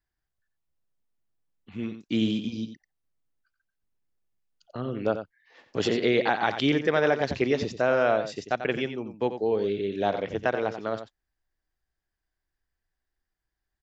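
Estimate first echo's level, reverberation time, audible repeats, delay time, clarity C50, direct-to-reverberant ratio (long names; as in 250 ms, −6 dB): −10.0 dB, no reverb audible, 1, 90 ms, no reverb audible, no reverb audible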